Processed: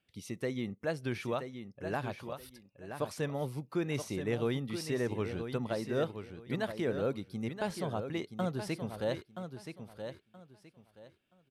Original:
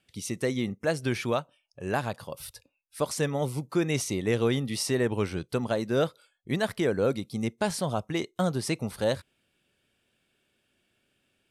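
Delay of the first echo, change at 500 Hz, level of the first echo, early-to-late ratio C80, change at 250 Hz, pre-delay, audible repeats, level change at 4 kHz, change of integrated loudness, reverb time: 0.975 s, -6.5 dB, -8.5 dB, none, -6.5 dB, none, 3, -9.0 dB, -7.5 dB, none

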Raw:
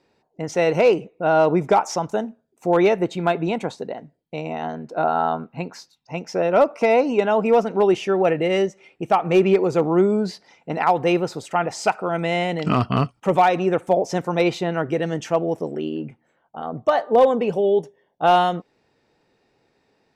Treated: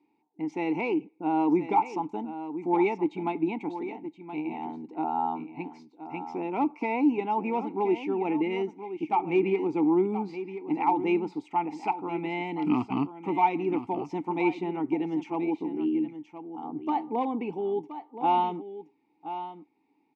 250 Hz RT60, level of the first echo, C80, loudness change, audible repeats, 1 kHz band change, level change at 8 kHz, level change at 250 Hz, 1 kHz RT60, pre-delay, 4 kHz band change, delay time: none, -11.5 dB, none, -8.5 dB, 1, -6.5 dB, under -20 dB, -3.0 dB, none, none, -15.0 dB, 1.023 s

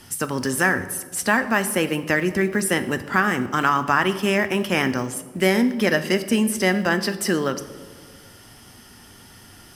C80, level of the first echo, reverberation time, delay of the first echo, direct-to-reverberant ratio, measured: 15.0 dB, none, 1.5 s, none, 10.0 dB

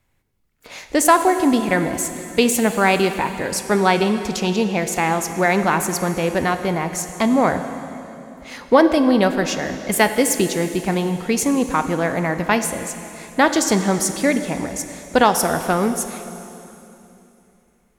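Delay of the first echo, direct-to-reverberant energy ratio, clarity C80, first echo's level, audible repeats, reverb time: none, 8.0 dB, 10.0 dB, none, none, 3.0 s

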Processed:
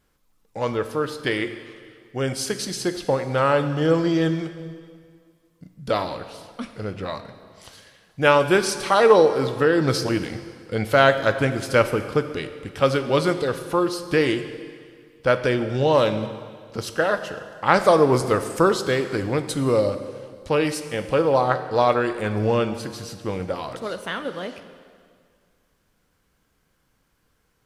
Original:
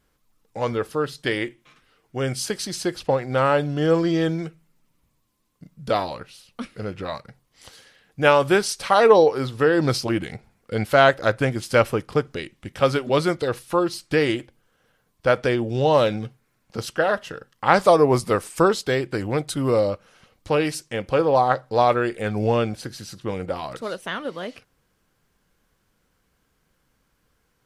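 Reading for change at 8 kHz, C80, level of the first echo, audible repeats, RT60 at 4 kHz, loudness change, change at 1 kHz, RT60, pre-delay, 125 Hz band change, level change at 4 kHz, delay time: +0.5 dB, 11.5 dB, none, none, 1.9 s, 0.0 dB, -1.0 dB, 2.0 s, 6 ms, 0.0 dB, +0.5 dB, none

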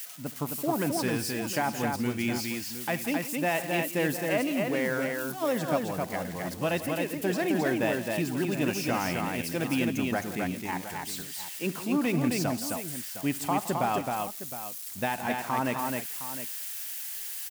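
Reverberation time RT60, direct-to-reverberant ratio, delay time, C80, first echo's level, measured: none, none, 71 ms, none, -19.0 dB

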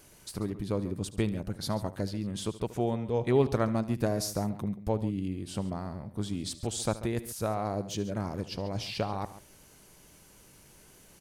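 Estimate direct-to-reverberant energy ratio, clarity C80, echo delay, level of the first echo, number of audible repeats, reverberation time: none, none, 74 ms, -17.0 dB, 2, none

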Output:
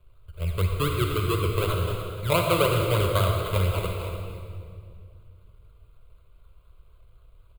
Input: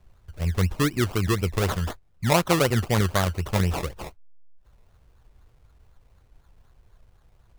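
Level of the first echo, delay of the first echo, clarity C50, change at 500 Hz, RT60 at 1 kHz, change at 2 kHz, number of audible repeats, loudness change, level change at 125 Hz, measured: -12.5 dB, 0.295 s, 2.0 dB, +1.0 dB, 2.0 s, -2.5 dB, 1, -1.0 dB, 0.0 dB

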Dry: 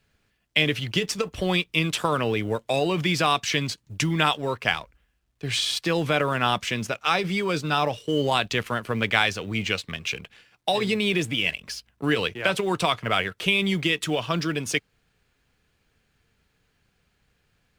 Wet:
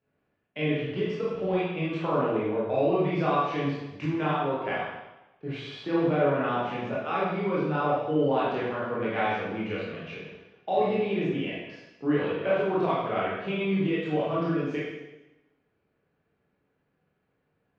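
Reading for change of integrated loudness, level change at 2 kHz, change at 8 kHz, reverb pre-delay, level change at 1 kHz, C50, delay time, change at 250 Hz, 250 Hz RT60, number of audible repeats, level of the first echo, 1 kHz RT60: -3.5 dB, -9.5 dB, under -30 dB, 17 ms, -2.5 dB, -1.0 dB, none, -0.5 dB, 1.0 s, none, none, 1.0 s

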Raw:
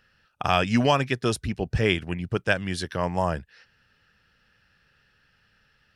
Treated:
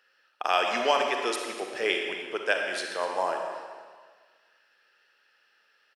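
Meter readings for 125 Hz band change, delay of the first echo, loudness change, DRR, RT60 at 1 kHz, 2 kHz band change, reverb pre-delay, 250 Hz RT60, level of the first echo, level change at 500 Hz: under -30 dB, 0.246 s, -2.5 dB, 2.0 dB, 1.6 s, -0.5 dB, 36 ms, 1.6 s, -15.5 dB, -1.5 dB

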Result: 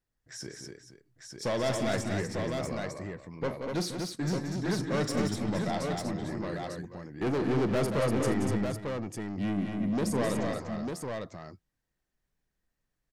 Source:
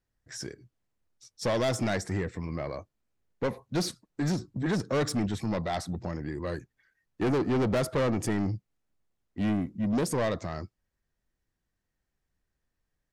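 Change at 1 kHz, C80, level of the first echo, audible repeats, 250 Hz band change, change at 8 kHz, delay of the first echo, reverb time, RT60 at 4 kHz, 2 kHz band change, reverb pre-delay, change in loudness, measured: 0.0 dB, none, -13.5 dB, 5, -0.5 dB, 0.0 dB, 40 ms, none, none, 0.0 dB, none, -1.0 dB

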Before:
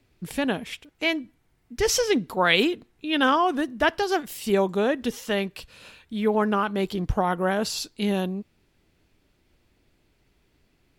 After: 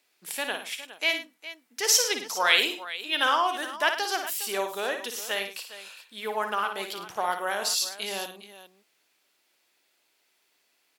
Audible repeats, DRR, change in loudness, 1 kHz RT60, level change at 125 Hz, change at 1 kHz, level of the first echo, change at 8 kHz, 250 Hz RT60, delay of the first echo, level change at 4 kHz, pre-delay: 3, none, -2.0 dB, none, under -20 dB, -2.0 dB, -7.5 dB, +5.5 dB, none, 56 ms, +2.5 dB, none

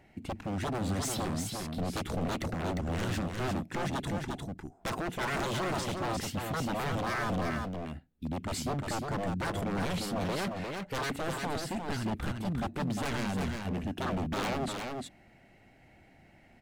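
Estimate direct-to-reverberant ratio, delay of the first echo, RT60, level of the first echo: none, 0.352 s, none, -4.5 dB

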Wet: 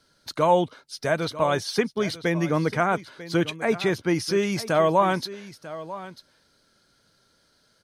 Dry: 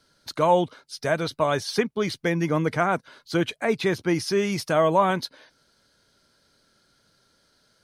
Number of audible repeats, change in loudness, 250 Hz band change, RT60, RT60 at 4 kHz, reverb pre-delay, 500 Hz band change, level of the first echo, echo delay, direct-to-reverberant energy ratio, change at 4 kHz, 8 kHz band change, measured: 1, 0.0 dB, 0.0 dB, none, none, none, 0.0 dB, -15.5 dB, 0.944 s, none, 0.0 dB, 0.0 dB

